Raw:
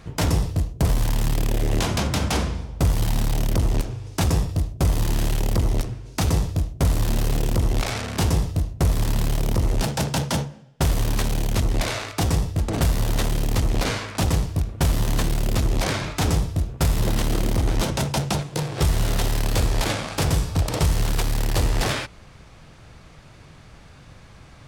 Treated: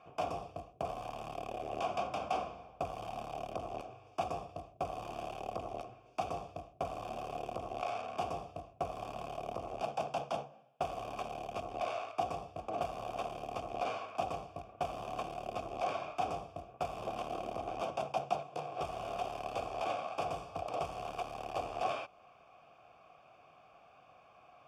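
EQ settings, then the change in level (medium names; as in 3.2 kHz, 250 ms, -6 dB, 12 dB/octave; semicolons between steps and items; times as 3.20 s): dynamic bell 1.9 kHz, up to -4 dB, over -42 dBFS, Q 0.9; vowel filter a; Butterworth band-stop 4 kHz, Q 7.3; +2.0 dB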